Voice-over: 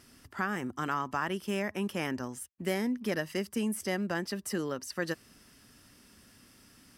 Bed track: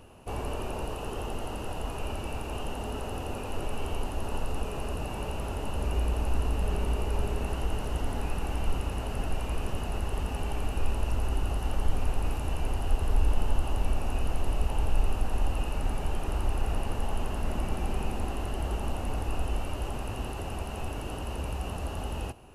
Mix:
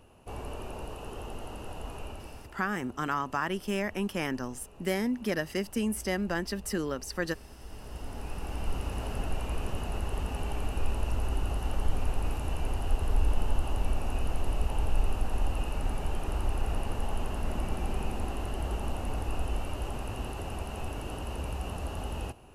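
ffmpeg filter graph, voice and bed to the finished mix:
-filter_complex "[0:a]adelay=2200,volume=1.19[s0];[1:a]volume=3.98,afade=t=out:st=1.96:d=0.61:silence=0.211349,afade=t=in:st=7.58:d=1.44:silence=0.133352[s1];[s0][s1]amix=inputs=2:normalize=0"

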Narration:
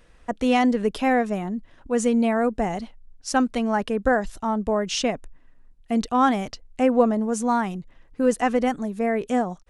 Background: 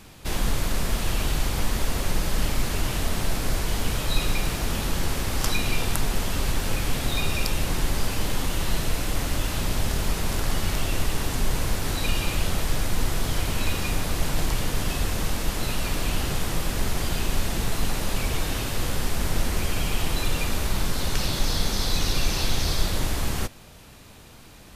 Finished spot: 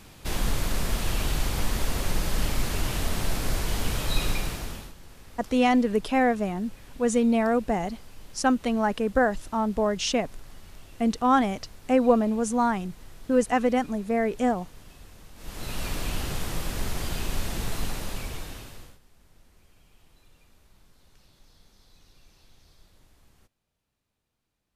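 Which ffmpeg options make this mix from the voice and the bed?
-filter_complex "[0:a]adelay=5100,volume=0.841[s0];[1:a]volume=6.68,afade=t=out:st=4.28:d=0.66:silence=0.0891251,afade=t=in:st=15.35:d=0.48:silence=0.11885,afade=t=out:st=17.78:d=1.21:silence=0.0334965[s1];[s0][s1]amix=inputs=2:normalize=0"

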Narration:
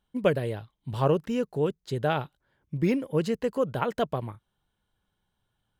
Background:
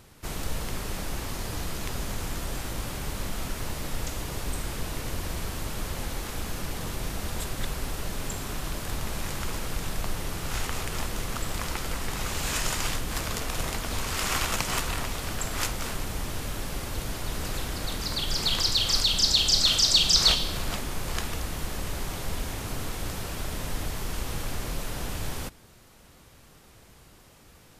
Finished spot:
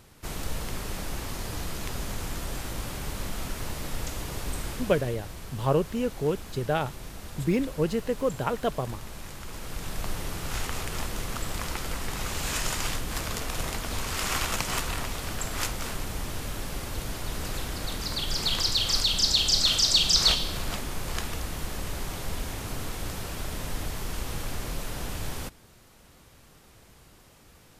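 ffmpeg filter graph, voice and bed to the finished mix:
-filter_complex "[0:a]adelay=4650,volume=0.944[s0];[1:a]volume=2.11,afade=t=out:st=4.68:d=0.48:silence=0.421697,afade=t=in:st=9.45:d=0.66:silence=0.421697[s1];[s0][s1]amix=inputs=2:normalize=0"

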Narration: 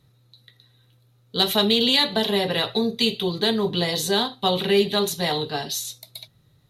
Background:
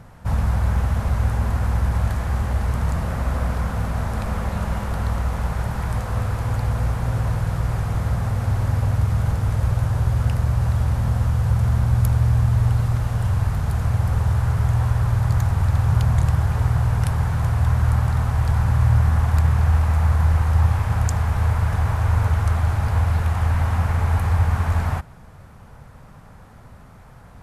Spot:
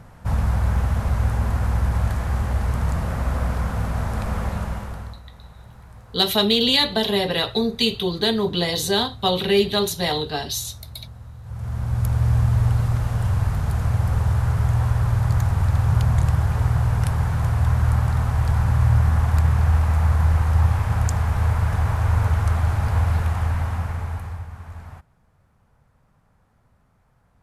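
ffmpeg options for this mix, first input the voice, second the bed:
-filter_complex "[0:a]adelay=4800,volume=1.12[s0];[1:a]volume=8.91,afade=t=out:st=4.46:d=0.74:silence=0.105925,afade=t=in:st=11.43:d=0.91:silence=0.105925,afade=t=out:st=23.15:d=1.32:silence=0.149624[s1];[s0][s1]amix=inputs=2:normalize=0"

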